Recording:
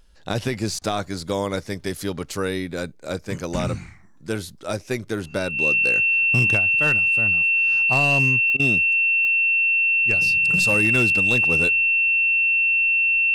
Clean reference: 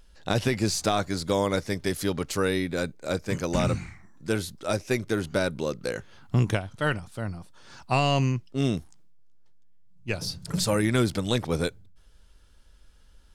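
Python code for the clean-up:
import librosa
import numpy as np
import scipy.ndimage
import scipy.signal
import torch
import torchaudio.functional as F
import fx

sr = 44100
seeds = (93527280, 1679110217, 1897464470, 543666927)

y = fx.fix_declip(x, sr, threshold_db=-12.0)
y = fx.fix_declick_ar(y, sr, threshold=10.0)
y = fx.notch(y, sr, hz=2700.0, q=30.0)
y = fx.fix_interpolate(y, sr, at_s=(0.79, 8.57), length_ms=24.0)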